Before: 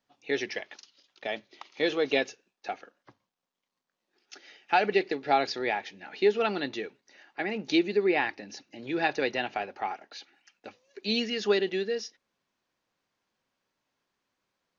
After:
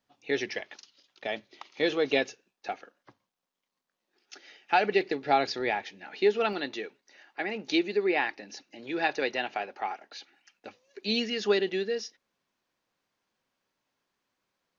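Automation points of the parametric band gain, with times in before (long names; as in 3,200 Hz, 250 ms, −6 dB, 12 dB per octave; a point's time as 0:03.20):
parametric band 64 Hz 2.6 octaves
+3.5 dB
from 0:02.72 −2.5 dB
from 0:05.01 +4 dB
from 0:05.83 −4.5 dB
from 0:06.53 −13 dB
from 0:10.05 −1.5 dB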